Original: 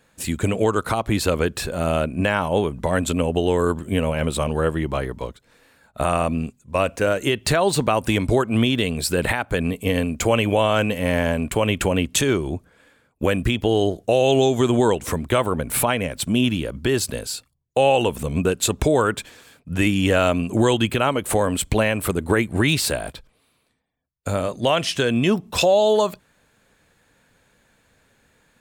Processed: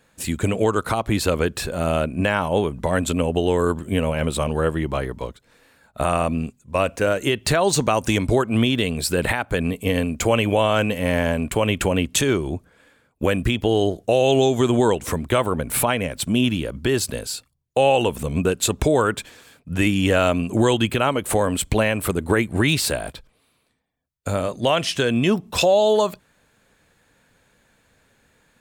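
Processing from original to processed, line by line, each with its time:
0:07.64–0:08.19: parametric band 6,300 Hz +10 dB 0.45 octaves

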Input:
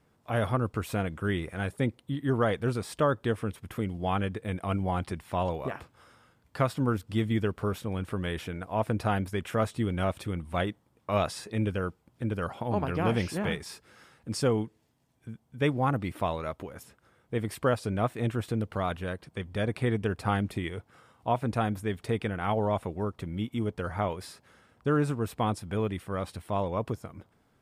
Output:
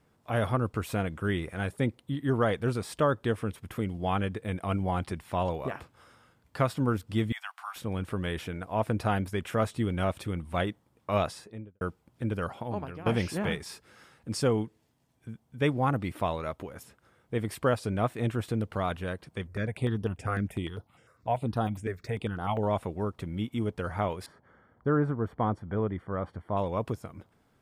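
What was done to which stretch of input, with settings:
0:07.32–0:07.76: Butterworth high-pass 720 Hz 96 dB per octave
0:11.14–0:11.81: fade out and dull
0:12.41–0:13.06: fade out, to −17.5 dB
0:19.47–0:22.63: step-sequenced phaser 10 Hz 860–7,800 Hz
0:24.26–0:26.57: Savitzky-Golay smoothing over 41 samples

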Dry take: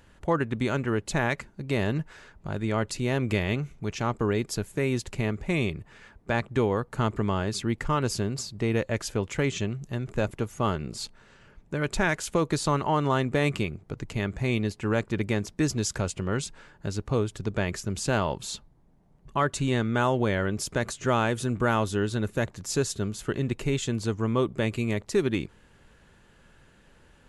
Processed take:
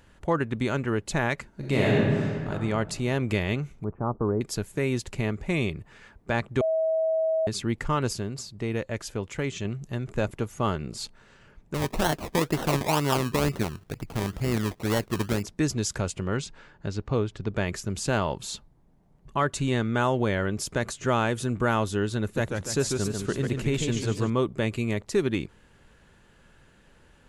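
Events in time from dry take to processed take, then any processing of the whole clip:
0:01.48–0:02.50: thrown reverb, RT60 1.9 s, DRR −5 dB
0:03.84–0:04.41: Butterworth low-pass 1,200 Hz
0:06.61–0:07.47: beep over 643 Hz −21.5 dBFS
0:08.13–0:09.65: clip gain −3.5 dB
0:11.74–0:15.43: sample-and-hold swept by an LFO 25×, swing 60% 2.1 Hz
0:16.36–0:17.55: low-pass filter 6,600 Hz → 4,100 Hz
0:22.21–0:24.30: feedback echo with a swinging delay time 145 ms, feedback 44%, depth 136 cents, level −4.5 dB

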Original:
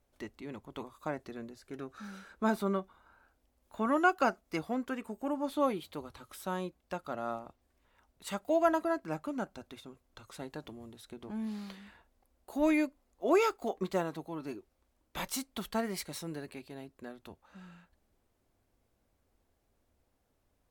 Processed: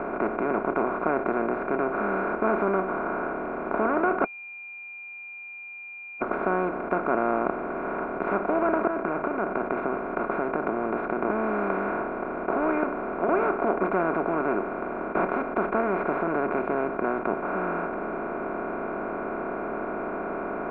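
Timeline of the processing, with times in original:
0:04.24–0:06.22: beep over 2,400 Hz −22.5 dBFS
0:08.87–0:11.25: downward compressor, threshold −48 dBFS
0:12.83–0:13.29: downward compressor, threshold −36 dBFS
whole clip: compressor on every frequency bin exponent 0.2; low-pass filter 1,700 Hz 24 dB per octave; level −3 dB

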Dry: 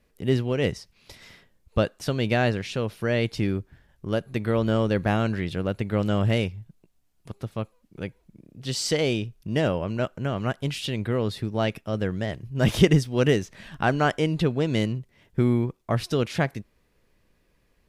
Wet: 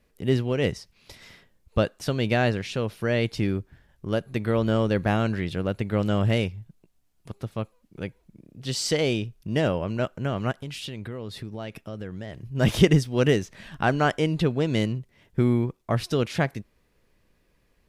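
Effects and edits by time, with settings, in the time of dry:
0:10.51–0:12.46: downward compressor 3 to 1, threshold −33 dBFS

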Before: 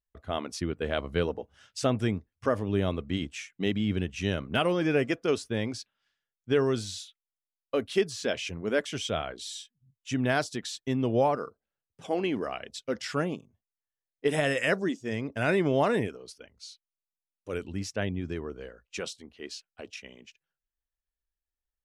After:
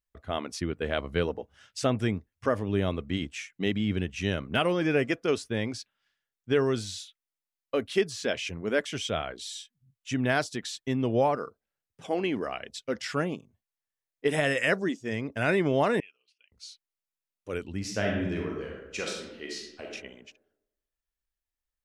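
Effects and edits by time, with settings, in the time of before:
0:16.00–0:16.52: resonant band-pass 2,700 Hz, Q 10
0:17.80–0:19.91: thrown reverb, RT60 0.98 s, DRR −1 dB
whole clip: parametric band 2,000 Hz +2.5 dB

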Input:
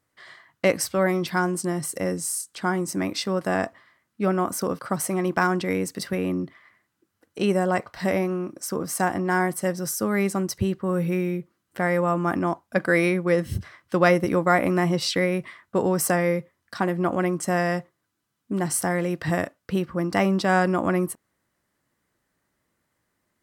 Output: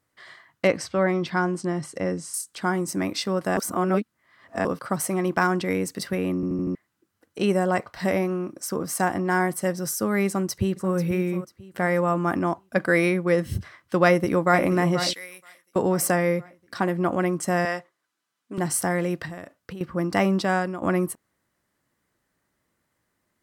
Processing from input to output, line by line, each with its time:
0:00.67–0:02.34: high-frequency loss of the air 92 metres
0:03.57–0:04.65: reverse
0:06.35: stutter in place 0.08 s, 5 plays
0:10.27–0:10.95: delay throw 490 ms, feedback 35%, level −12 dB
0:14.05–0:14.62: delay throw 480 ms, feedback 45%, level −10 dB
0:15.13–0:15.76: first difference
0:17.65–0:18.58: meter weighting curve A
0:19.25–0:19.81: downward compressor 10 to 1, threshold −33 dBFS
0:20.37–0:20.82: fade out linear, to −13.5 dB

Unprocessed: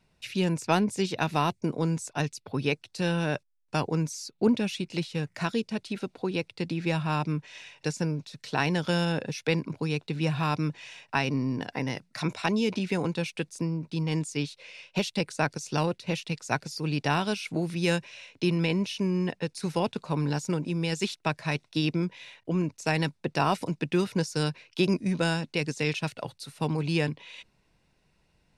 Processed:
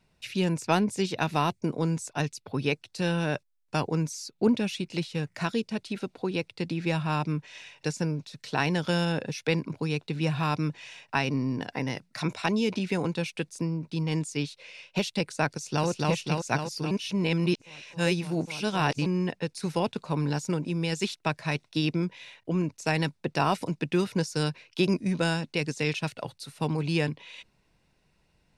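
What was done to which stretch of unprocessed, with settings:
0:15.47–0:15.87: delay throw 270 ms, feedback 70%, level −1 dB
0:16.91–0:19.06: reverse

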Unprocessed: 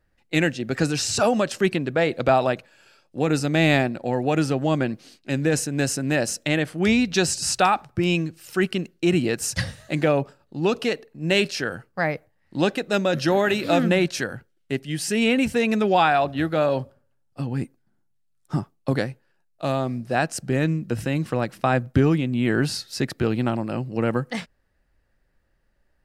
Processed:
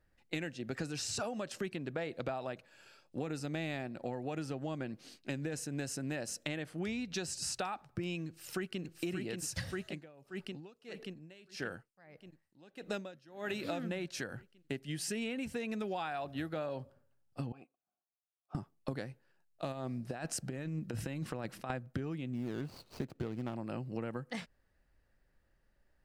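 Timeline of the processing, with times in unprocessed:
0:08.26–0:08.82: delay throw 580 ms, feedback 65%, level −2.5 dB
0:09.82–0:13.60: tremolo with a sine in dB 1.6 Hz, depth 34 dB
0:15.80–0:16.49: high-shelf EQ 7,900 Hz +8.5 dB
0:17.52–0:18.55: formant filter a
0:19.72–0:21.70: compressor whose output falls as the input rises −26 dBFS, ratio −0.5
0:22.27–0:23.54: running median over 25 samples
whole clip: downward compressor 10 to 1, threshold −30 dBFS; level −5 dB

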